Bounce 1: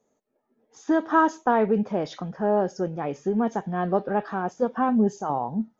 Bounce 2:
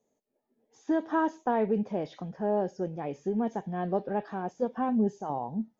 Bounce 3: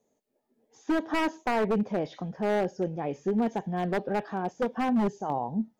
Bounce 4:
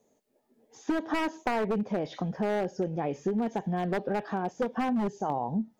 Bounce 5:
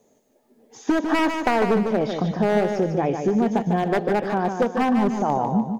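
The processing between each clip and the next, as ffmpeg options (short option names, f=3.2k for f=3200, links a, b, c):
-filter_complex "[0:a]acrossover=split=3300[a][b];[b]acompressor=threshold=-54dB:ratio=4:attack=1:release=60[c];[a][c]amix=inputs=2:normalize=0,equalizer=f=1.3k:t=o:w=0.59:g=-8.5,volume=-5dB"
-af "aeval=exprs='0.075*(abs(mod(val(0)/0.075+3,4)-2)-1)':c=same,volume=3dB"
-af "acompressor=threshold=-31dB:ratio=6,volume=5dB"
-af "aecho=1:1:149|298|447|596|745:0.473|0.185|0.072|0.0281|0.0109,volume=8dB"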